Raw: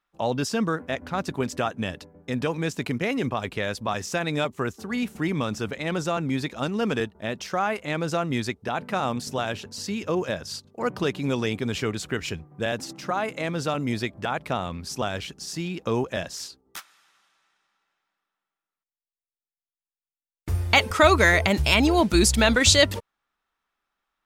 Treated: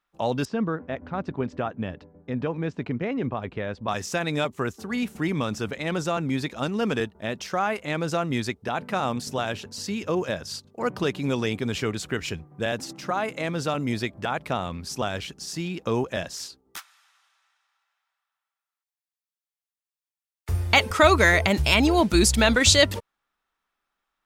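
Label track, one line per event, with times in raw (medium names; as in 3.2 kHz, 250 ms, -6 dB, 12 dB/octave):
0.450000	3.880000	tape spacing loss at 10 kHz 33 dB
16.780000	20.490000	high-pass 700 Hz 24 dB/octave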